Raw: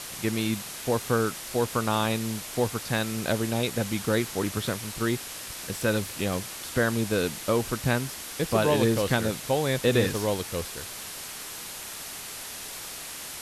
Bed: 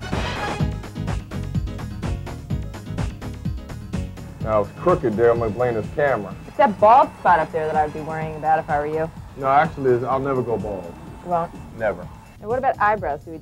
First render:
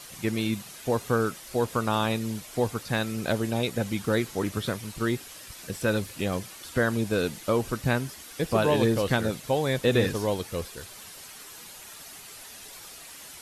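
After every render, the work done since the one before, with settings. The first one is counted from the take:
broadband denoise 9 dB, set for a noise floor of −39 dBFS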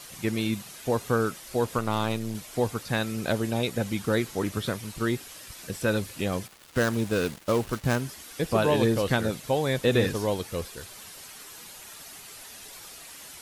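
0:01.78–0:02.35: gain on one half-wave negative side −7 dB
0:06.47–0:08.02: gap after every zero crossing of 0.11 ms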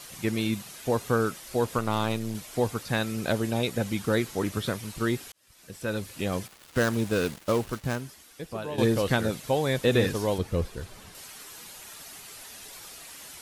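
0:05.32–0:06.38: fade in
0:07.48–0:08.78: fade out quadratic, to −12 dB
0:10.38–0:11.15: spectral tilt −2.5 dB per octave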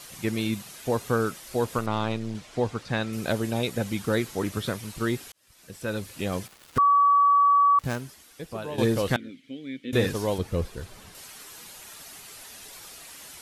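0:01.86–0:03.13: high-frequency loss of the air 82 metres
0:06.78–0:07.79: beep over 1,140 Hz −15.5 dBFS
0:09.16–0:09.93: formant filter i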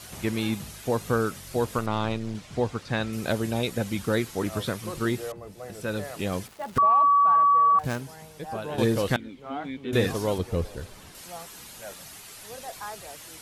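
mix in bed −20 dB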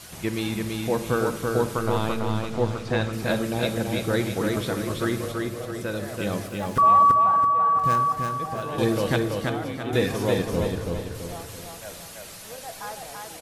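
repeating echo 333 ms, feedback 43%, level −3.5 dB
rectangular room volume 1,900 cubic metres, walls mixed, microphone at 0.66 metres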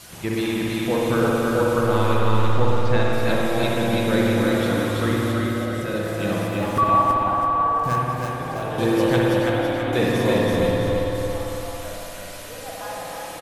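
single-tap delay 323 ms −7 dB
spring reverb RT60 3 s, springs 56 ms, chirp 50 ms, DRR −3 dB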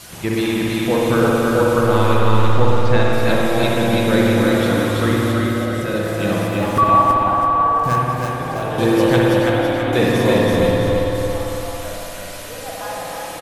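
level +4.5 dB

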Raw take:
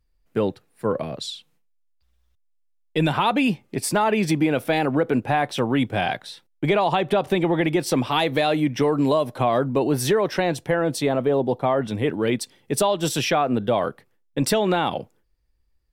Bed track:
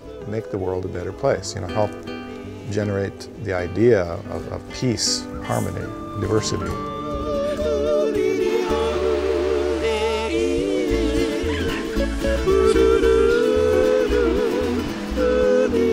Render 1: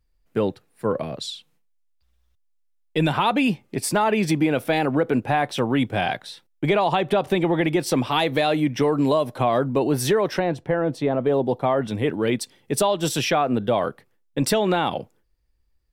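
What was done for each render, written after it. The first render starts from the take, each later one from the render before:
0:10.39–0:11.26: low-pass filter 1,400 Hz 6 dB per octave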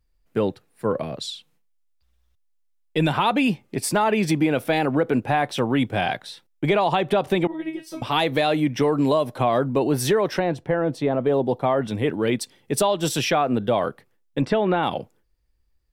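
0:07.47–0:08.02: tuned comb filter 320 Hz, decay 0.23 s, mix 100%
0:14.41–0:14.83: low-pass filter 2,300 Hz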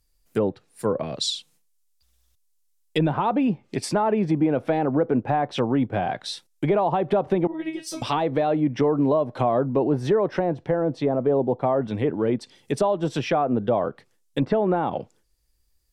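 treble cut that deepens with the level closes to 1,000 Hz, closed at −18.5 dBFS
bass and treble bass −1 dB, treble +14 dB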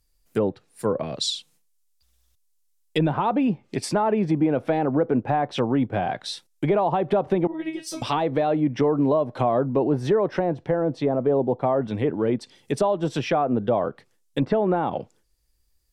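no processing that can be heard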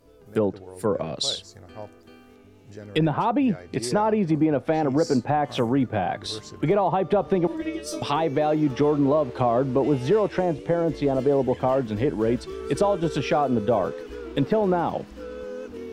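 mix in bed track −18 dB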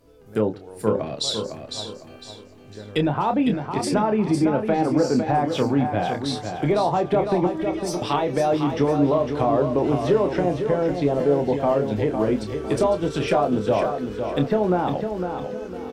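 double-tracking delay 28 ms −8 dB
repeating echo 505 ms, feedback 32%, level −7 dB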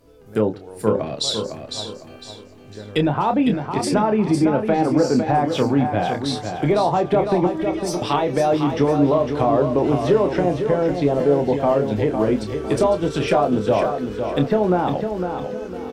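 level +2.5 dB

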